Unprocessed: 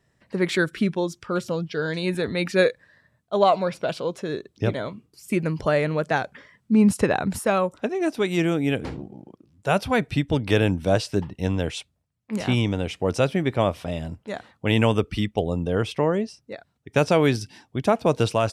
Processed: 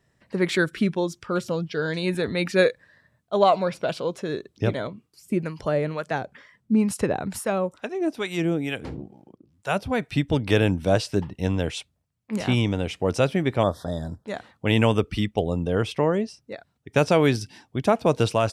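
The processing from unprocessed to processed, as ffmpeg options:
-filter_complex "[0:a]asettb=1/sr,asplit=3[a][b][c];[a]atrim=end=4.874[d];[b]atrim=start=4.87:end=10.15,asetpts=PTS-STARTPTS,afade=t=in:d=0.004:c=qsin,afade=t=out:st=5.276:d=0.004:c=qsin,acrossover=split=710[e][f];[e]aeval=exprs='val(0)*(1-0.7/2+0.7/2*cos(2*PI*2.2*n/s))':c=same[g];[f]aeval=exprs='val(0)*(1-0.7/2-0.7/2*cos(2*PI*2.2*n/s))':c=same[h];[g][h]amix=inputs=2:normalize=0[i];[c]atrim=start=10.146[j];[d][i]acrossfade=d=0.004:c1=hsin:c2=qsin[k];[k][j]acrossfade=d=0.004:c1=qsin:c2=hsin,asettb=1/sr,asplit=3[l][m][n];[l]atrim=end=13.634[o];[m]atrim=start=13.63:end=14.26,asetpts=PTS-STARTPTS,afade=t=in:d=0.004:c=qsin,afade=t=out:st=0.626:d=0.004:c=qsin,asuperstop=centerf=2500:order=12:qfactor=1.6[p];[n]atrim=start=14.256[q];[o][p]acrossfade=d=0.004:c1=hsin:c2=qsin[r];[r][q]acrossfade=d=0.004:c1=qsin:c2=hsin"

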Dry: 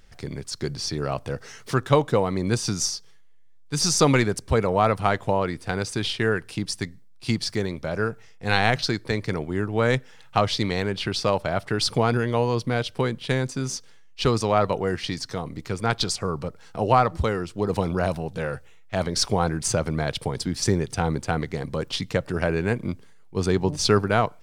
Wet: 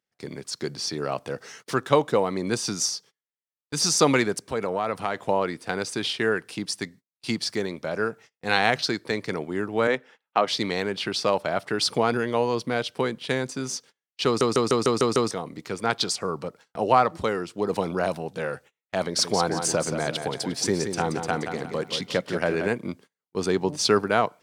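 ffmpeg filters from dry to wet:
-filter_complex "[0:a]asettb=1/sr,asplit=3[a][b][c];[a]atrim=end=4.444[d];[b]atrim=start=4.44:end=5.23,asetpts=PTS-STARTPTS,afade=t=in:d=0.004:c=qsin,afade=t=out:st=0.786:d=0.004:c=qsin,acompressor=threshold=-21dB:ratio=4:attack=3.2:release=140:knee=1:detection=peak[e];[c]atrim=start=5.226[f];[d][e]acrossfade=d=0.004:c1=hsin:c2=qsin[g];[g][f]acrossfade=d=0.004:c1=qsin:c2=hsin,asettb=1/sr,asplit=3[h][i][j];[h]atrim=end=9.874[k];[i]atrim=start=9.87:end=10.48,asetpts=PTS-STARTPTS,afade=t=in:d=0.004:c=qsin,afade=t=out:st=0.606:d=0.004:c=qsin,acrossover=split=190 3400:gain=0.0891 1 0.251[l][m][n];[l][m][n]amix=inputs=3:normalize=0[o];[j]atrim=start=10.476[p];[k][o]acrossfade=d=0.004:c1=hsin:c2=qsin[q];[q][p]acrossfade=d=0.004:c1=qsin:c2=hsin,asettb=1/sr,asplit=3[r][s][t];[r]atrim=end=19.014[u];[s]atrim=start=19.01:end=22.68,asetpts=PTS-STARTPTS,afade=t=in:d=0.004:c=qsin,afade=t=out:st=3.666:d=0.004:c=qsin,aecho=1:1:177|354|531|708:0.422|0.156|0.0577|0.0214,atrim=end_sample=161847[v];[t]atrim=start=22.676[w];[u][v]acrossfade=d=0.004:c1=hsin:c2=qsin[x];[x][w]acrossfade=d=0.004:c1=qsin:c2=hsin,asplit=8[y][z][aa][ab][ac][ad][ae][af];[y]atrim=end=14.412[ag];[z]atrim=start=14.258:end=14.412[ah];[aa]atrim=start=14.258:end=14.412[ai];[ab]atrim=start=14.258:end=14.412[aj];[ac]atrim=start=14.258:end=14.412[ak];[ad]atrim=start=14.258:end=14.412[al];[ae]atrim=start=14.258:end=14.412[am];[af]atrim=start=15.308[an];[ag][ah]acrossfade=d=0.004:c1=hsin:c2=hsin[ao];[ao][ai]acrossfade=d=0.004:c1=hsin:c2=hsin[ap];[ap][aj]acrossfade=d=0.004:c1=hsin:c2=hsin[aq];[aq][ak]acrossfade=d=0.004:c1=hsin:c2=hsin[ar];[ar][al]acrossfade=d=0.004:c1=hsin:c2=hsin[as];[as][am]acrossfade=d=0.004:c1=hsin:c2=hsin[at];[at][an]acrossfade=d=0.004:c1=hsin:c2=hsin,highpass=210,agate=range=-27dB:threshold=-46dB:ratio=16:detection=peak"

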